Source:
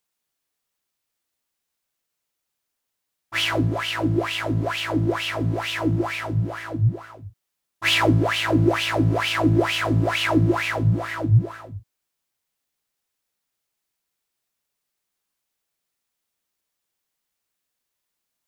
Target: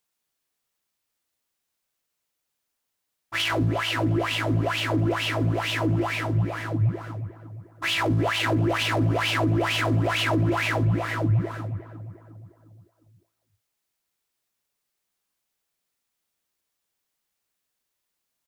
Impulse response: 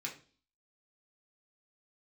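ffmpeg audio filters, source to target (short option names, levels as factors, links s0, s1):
-filter_complex "[0:a]alimiter=limit=0.15:level=0:latency=1:release=11,asplit=2[s0][s1];[s1]adelay=355,lowpass=f=1500:p=1,volume=0.224,asplit=2[s2][s3];[s3]adelay=355,lowpass=f=1500:p=1,volume=0.5,asplit=2[s4][s5];[s5]adelay=355,lowpass=f=1500:p=1,volume=0.5,asplit=2[s6][s7];[s7]adelay=355,lowpass=f=1500:p=1,volume=0.5,asplit=2[s8][s9];[s9]adelay=355,lowpass=f=1500:p=1,volume=0.5[s10];[s0][s2][s4][s6][s8][s10]amix=inputs=6:normalize=0"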